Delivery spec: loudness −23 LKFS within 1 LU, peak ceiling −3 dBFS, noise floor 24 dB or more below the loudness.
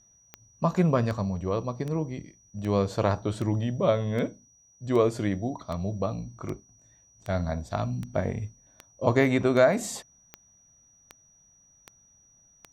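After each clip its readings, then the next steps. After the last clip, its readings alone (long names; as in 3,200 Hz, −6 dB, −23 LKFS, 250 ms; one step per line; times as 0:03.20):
number of clicks 17; interfering tone 5,800 Hz; level of the tone −58 dBFS; integrated loudness −27.5 LKFS; sample peak −8.0 dBFS; target loudness −23.0 LKFS
→ click removal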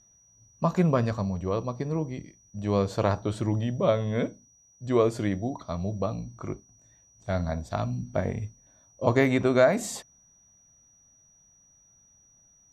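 number of clicks 0; interfering tone 5,800 Hz; level of the tone −58 dBFS
→ notch filter 5,800 Hz, Q 30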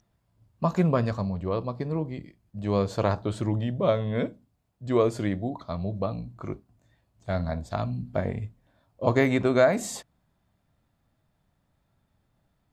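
interfering tone none found; integrated loudness −27.5 LKFS; sample peak −8.0 dBFS; target loudness −23.0 LKFS
→ level +4.5 dB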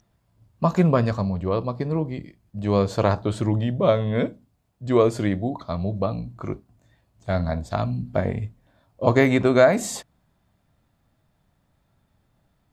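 integrated loudness −23.0 LKFS; sample peak −3.5 dBFS; background noise floor −69 dBFS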